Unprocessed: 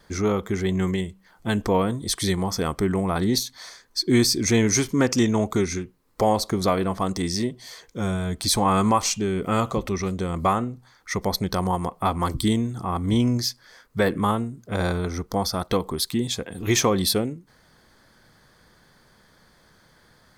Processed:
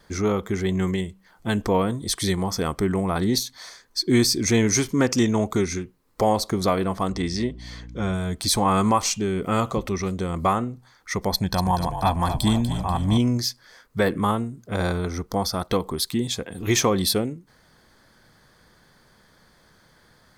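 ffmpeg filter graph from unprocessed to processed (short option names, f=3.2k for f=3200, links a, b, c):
-filter_complex "[0:a]asettb=1/sr,asplit=3[a][b][c];[a]atrim=end=7.094[d];[b]atrim=start=7.09:end=8.14,asetpts=PTS-STARTPTS,afade=t=in:d=0.004:c=qsin,afade=t=out:st=1.046:d=0.004:c=qsin,lowpass=2.8k,aemphasis=mode=production:type=75kf,aeval=exprs='val(0)+0.0126*(sin(2*PI*60*n/s)+sin(2*PI*2*60*n/s)/2+sin(2*PI*3*60*n/s)/3+sin(2*PI*4*60*n/s)/4+sin(2*PI*5*60*n/s)/5)':c=same[e];[c]atrim=start=8.136[f];[d][e]acrossfade=d=0.004:c1=hsin:c2=qsin[g];[g][f]acrossfade=d=0.004:c1=qsin:c2=hsin,asettb=1/sr,asplit=3[h][i][j];[h]atrim=end=11.324[k];[i]atrim=start=11.32:end=13.18,asetpts=PTS-STARTPTS,afade=t=in:d=0.004:c=qsin,afade=t=out:st=1.856:d=0.004:c=qsin,aecho=1:1:1.2:0.55,atrim=end_sample=82026,asplit=7[l][m][n][o][p][q][r];[m]adelay=243,afreqshift=-44,volume=-9.5dB[s];[n]adelay=486,afreqshift=-88,volume=-15dB[t];[o]adelay=729,afreqshift=-132,volume=-20.5dB[u];[p]adelay=972,afreqshift=-176,volume=-26dB[v];[q]adelay=1215,afreqshift=-220,volume=-31.6dB[w];[r]adelay=1458,afreqshift=-264,volume=-37.1dB[x];[l][s][t][u][v][w][x]amix=inputs=7:normalize=0,atrim=end_sample=82026[y];[j]atrim=start=13.176[z];[k][y]acrossfade=d=0.004:c1=hsin:c2=qsin[aa];[aa][z]acrossfade=d=0.004:c1=qsin:c2=hsin"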